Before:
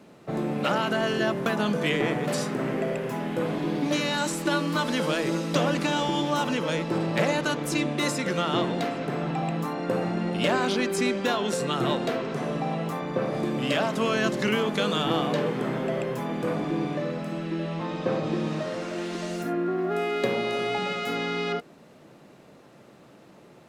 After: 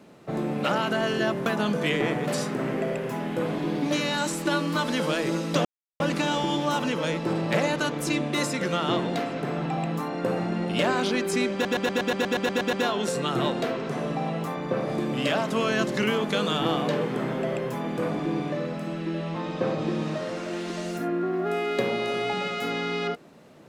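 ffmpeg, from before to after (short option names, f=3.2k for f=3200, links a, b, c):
-filter_complex "[0:a]asplit=12[a][b][c][d][e][f][g][h][i][j][k][l];[a]atrim=end=5.65,asetpts=PTS-STARTPTS,afade=t=out:st=5.646:d=0.004:c=hsin,apad=pad_dur=0.35[m];[b]atrim=start=5.65:end=11.302,asetpts=PTS-STARTPTS,afade=t=in:d=0.004:c=hsin[n];[c]atrim=start=11.178:end=11.302[o];[d]atrim=start=11.178:end=11.302[p];[e]atrim=start=11.178:end=11.302[q];[f]atrim=start=11.178:end=11.302[r];[g]atrim=start=11.178:end=11.302[s];[h]atrim=start=11.178:end=11.302[t];[i]atrim=start=11.178:end=11.302[u];[j]atrim=start=11.178:end=11.302[v];[k]atrim=start=11.178:end=11.302[w];[l]atrim=start=11.178[x];[m][n]concat=n=2:v=0:a=1[y];[y][o]acrossfade=d=0.004:c1=hsin:c2=hsin[z];[z][p]acrossfade=d=0.004:c1=hsin:c2=hsin[aa];[aa][q]acrossfade=d=0.004:c1=hsin:c2=hsin[ab];[ab][r]acrossfade=d=0.004:c1=hsin:c2=hsin[ac];[ac][s]acrossfade=d=0.004:c1=hsin:c2=hsin[ad];[ad][t]acrossfade=d=0.004:c1=hsin:c2=hsin[ae];[ae][u]acrossfade=d=0.004:c1=hsin:c2=hsin[af];[af][v]acrossfade=d=0.004:c1=hsin:c2=hsin[ag];[ag][w]acrossfade=d=0.004:c1=hsin:c2=hsin[ah];[ah][x]acrossfade=d=0.004:c1=hsin:c2=hsin"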